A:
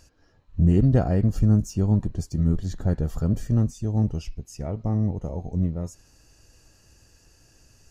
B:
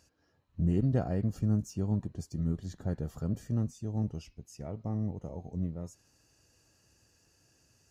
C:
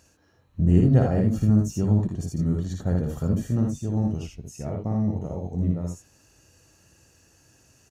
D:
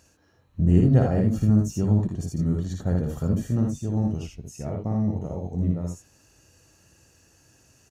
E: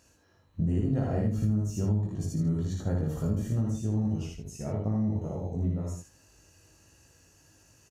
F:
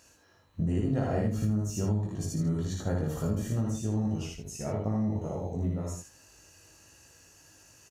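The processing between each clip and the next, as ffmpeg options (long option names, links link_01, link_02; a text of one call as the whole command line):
ffmpeg -i in.wav -af "highpass=89,volume=-8.5dB" out.wav
ffmpeg -i in.wav -filter_complex "[0:a]bandreject=frequency=4900:width=7.2,asplit=2[link_01][link_02];[link_02]aecho=0:1:57|79:0.631|0.562[link_03];[link_01][link_03]amix=inputs=2:normalize=0,volume=7dB" out.wav
ffmpeg -i in.wav -af anull out.wav
ffmpeg -i in.wav -af "aecho=1:1:19|78:0.708|0.501,acompressor=threshold=-20dB:ratio=5,volume=-4dB" out.wav
ffmpeg -i in.wav -af "lowshelf=frequency=400:gain=-7.5,volume=5dB" out.wav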